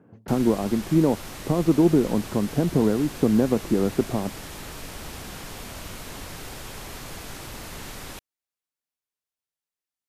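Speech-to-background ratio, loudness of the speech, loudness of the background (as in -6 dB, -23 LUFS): 14.5 dB, -23.0 LUFS, -37.5 LUFS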